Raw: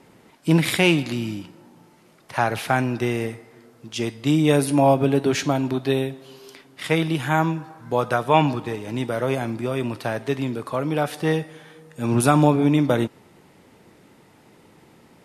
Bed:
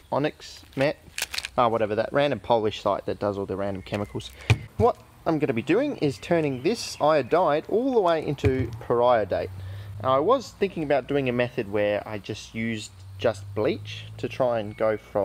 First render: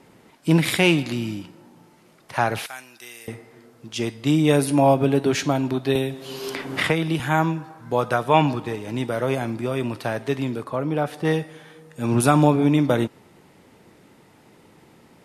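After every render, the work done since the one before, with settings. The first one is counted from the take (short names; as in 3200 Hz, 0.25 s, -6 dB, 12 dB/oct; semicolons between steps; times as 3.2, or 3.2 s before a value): 2.66–3.28 differentiator; 5.95–7.2 three-band squash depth 100%; 10.64–11.25 high shelf 2000 Hz -8 dB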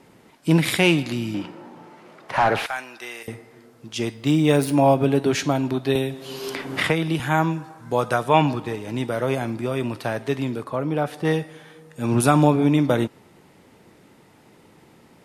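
1.34–3.23 overdrive pedal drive 21 dB, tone 1000 Hz, clips at -7 dBFS; 4.13–4.93 median filter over 3 samples; 7.51–8.29 bell 8100 Hz +5 dB 1.1 oct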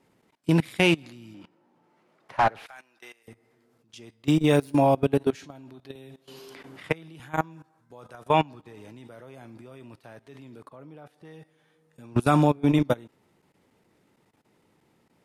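level quantiser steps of 18 dB; upward expander 1.5:1, over -40 dBFS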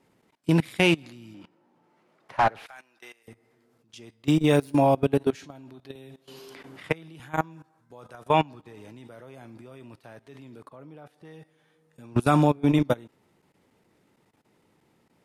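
nothing audible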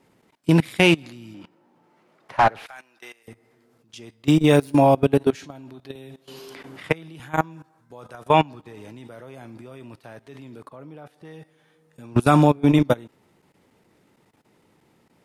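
gain +4.5 dB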